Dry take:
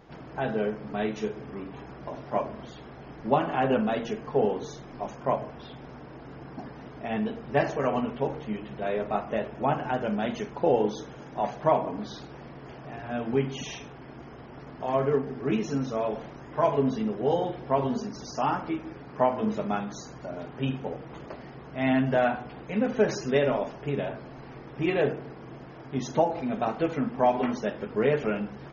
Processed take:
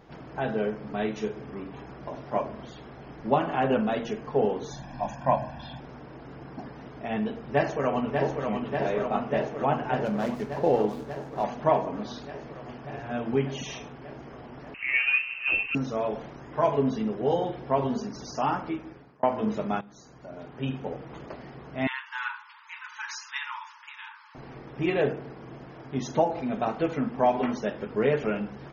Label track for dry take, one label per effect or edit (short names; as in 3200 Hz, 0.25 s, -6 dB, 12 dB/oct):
4.710000	5.800000	comb 1.2 ms, depth 95%
7.450000	8.470000	echo throw 0.59 s, feedback 80%, level -4.5 dB
10.050000	11.440000	median filter over 15 samples
14.740000	15.750000	inverted band carrier 2900 Hz
18.480000	19.230000	fade out equal-power
19.810000	20.920000	fade in linear, from -16.5 dB
21.870000	24.350000	brick-wall FIR high-pass 850 Hz